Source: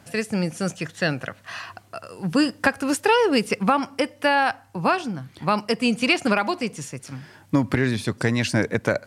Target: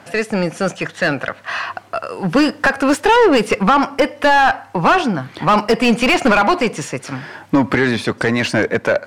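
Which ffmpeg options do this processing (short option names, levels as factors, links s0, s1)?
-filter_complex "[0:a]dynaudnorm=f=210:g=17:m=3.76,asplit=2[s0][s1];[s1]highpass=f=720:p=1,volume=14.1,asoftclip=type=tanh:threshold=0.891[s2];[s0][s2]amix=inputs=2:normalize=0,lowpass=f=1400:p=1,volume=0.501,volume=0.891"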